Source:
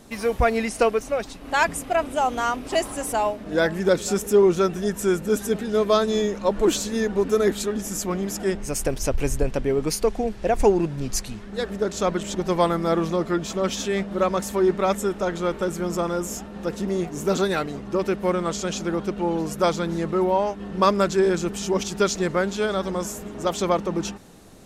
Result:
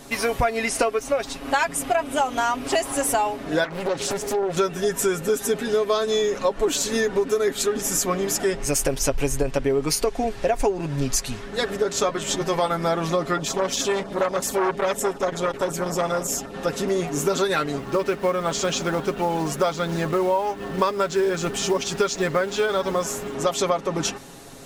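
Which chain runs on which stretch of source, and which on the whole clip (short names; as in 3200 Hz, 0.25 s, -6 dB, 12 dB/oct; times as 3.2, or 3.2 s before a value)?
3.64–4.57 compressor, threshold -26 dBFS + air absorption 54 m + Doppler distortion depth 0.78 ms
12–12.71 transient shaper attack -7 dB, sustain -3 dB + doubler 14 ms -6.5 dB
13.37–16.54 LFO notch saw down 9.1 Hz 810–4000 Hz + core saturation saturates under 930 Hz
17.78–23.33 companded quantiser 6-bit + high shelf 7300 Hz -8.5 dB
whole clip: low shelf 400 Hz -6.5 dB; comb 7.3 ms, depth 59%; compressor 6:1, threshold -26 dBFS; gain +7.5 dB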